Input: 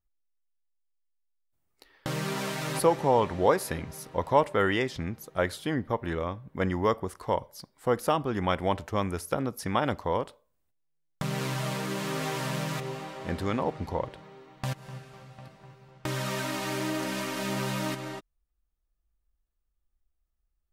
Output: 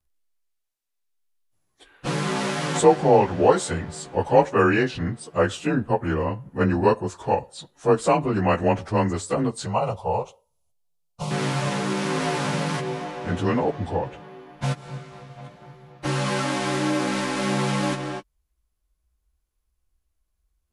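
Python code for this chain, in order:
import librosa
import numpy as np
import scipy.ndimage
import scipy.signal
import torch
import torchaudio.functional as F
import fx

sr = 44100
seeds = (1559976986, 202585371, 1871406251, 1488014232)

y = fx.partial_stretch(x, sr, pct=92)
y = fx.fixed_phaser(y, sr, hz=710.0, stages=4, at=(9.66, 11.31))
y = y * 10.0 ** (8.5 / 20.0)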